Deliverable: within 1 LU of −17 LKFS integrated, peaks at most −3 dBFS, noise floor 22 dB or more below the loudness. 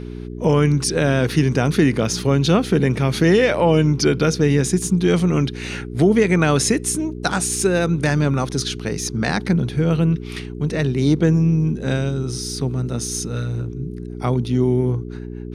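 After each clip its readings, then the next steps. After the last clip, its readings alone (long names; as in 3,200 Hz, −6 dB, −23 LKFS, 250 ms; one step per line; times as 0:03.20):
mains hum 60 Hz; hum harmonics up to 420 Hz; level of the hum −28 dBFS; integrated loudness −19.0 LKFS; sample peak −3.5 dBFS; target loudness −17.0 LKFS
→ hum removal 60 Hz, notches 7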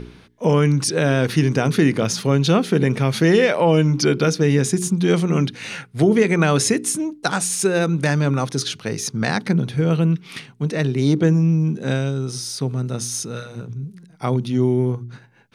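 mains hum none found; integrated loudness −19.5 LKFS; sample peak −3.5 dBFS; target loudness −17.0 LKFS
→ level +2.5 dB
brickwall limiter −3 dBFS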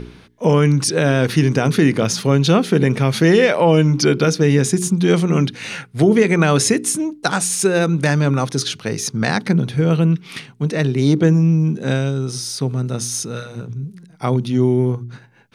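integrated loudness −17.0 LKFS; sample peak −3.0 dBFS; background noise floor −46 dBFS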